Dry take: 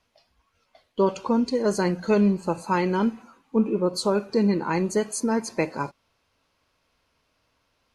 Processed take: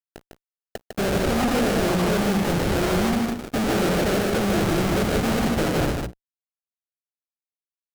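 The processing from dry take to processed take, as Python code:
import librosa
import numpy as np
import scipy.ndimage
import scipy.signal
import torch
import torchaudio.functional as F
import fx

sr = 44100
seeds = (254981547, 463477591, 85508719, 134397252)

p1 = fx.sample_hold(x, sr, seeds[0], rate_hz=1000.0, jitter_pct=20)
p2 = fx.hum_notches(p1, sr, base_hz=60, count=5)
p3 = fx.fuzz(p2, sr, gain_db=47.0, gate_db=-54.0)
p4 = p3 + fx.echo_single(p3, sr, ms=152, db=-4.0, dry=0)
y = p4 * librosa.db_to_amplitude(-8.5)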